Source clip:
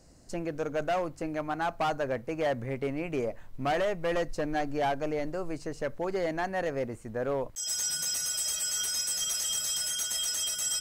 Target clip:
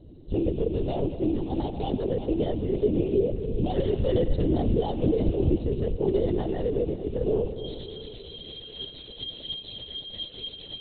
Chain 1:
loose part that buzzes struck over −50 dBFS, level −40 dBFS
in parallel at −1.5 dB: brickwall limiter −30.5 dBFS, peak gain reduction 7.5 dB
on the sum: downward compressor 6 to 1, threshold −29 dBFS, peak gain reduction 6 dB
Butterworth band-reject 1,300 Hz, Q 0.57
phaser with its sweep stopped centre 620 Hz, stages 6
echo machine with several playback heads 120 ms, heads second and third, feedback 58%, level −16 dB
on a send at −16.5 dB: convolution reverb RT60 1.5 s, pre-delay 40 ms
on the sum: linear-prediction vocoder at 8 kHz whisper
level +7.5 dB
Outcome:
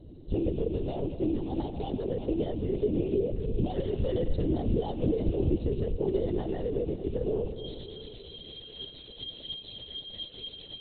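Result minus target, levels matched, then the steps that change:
downward compressor: peak gain reduction +6 dB
remove: downward compressor 6 to 1, threshold −29 dBFS, peak gain reduction 6 dB

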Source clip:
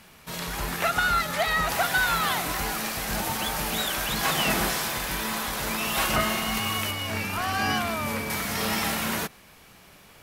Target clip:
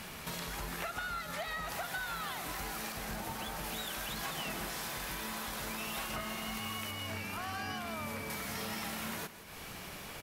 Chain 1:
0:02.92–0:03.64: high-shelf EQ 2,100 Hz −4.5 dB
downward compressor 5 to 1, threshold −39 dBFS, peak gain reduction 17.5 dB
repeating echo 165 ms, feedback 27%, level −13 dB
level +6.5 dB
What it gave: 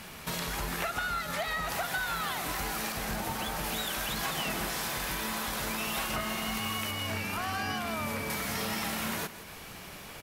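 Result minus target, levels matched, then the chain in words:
downward compressor: peak gain reduction −6 dB
0:02.92–0:03.64: high-shelf EQ 2,100 Hz −4.5 dB
downward compressor 5 to 1, threshold −46.5 dBFS, peak gain reduction 23.5 dB
repeating echo 165 ms, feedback 27%, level −13 dB
level +6.5 dB

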